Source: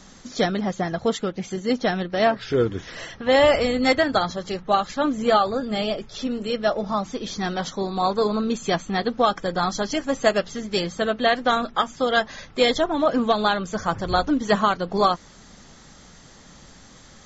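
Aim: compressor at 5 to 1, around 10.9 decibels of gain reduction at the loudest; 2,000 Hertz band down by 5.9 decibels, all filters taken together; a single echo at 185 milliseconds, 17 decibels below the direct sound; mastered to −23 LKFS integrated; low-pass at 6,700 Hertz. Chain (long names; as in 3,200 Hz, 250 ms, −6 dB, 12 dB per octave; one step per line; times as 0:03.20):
low-pass filter 6,700 Hz
parametric band 2,000 Hz −7.5 dB
downward compressor 5 to 1, threshold −26 dBFS
single-tap delay 185 ms −17 dB
level +7.5 dB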